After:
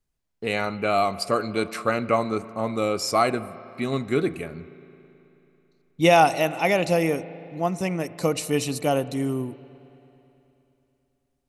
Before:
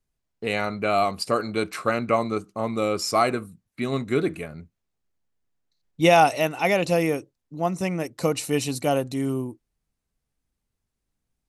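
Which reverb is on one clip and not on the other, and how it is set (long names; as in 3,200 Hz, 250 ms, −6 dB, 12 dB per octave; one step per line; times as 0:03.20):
spring reverb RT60 3.2 s, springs 36/54 ms, chirp 80 ms, DRR 16 dB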